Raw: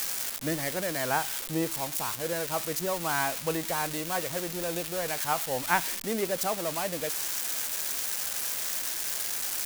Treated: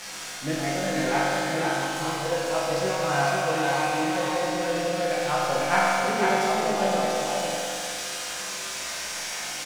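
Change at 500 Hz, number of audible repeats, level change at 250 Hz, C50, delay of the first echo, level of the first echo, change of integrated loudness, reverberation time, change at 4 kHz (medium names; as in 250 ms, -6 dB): +7.0 dB, 1, +6.0 dB, -5.0 dB, 498 ms, -3.0 dB, +3.5 dB, 2.5 s, +4.5 dB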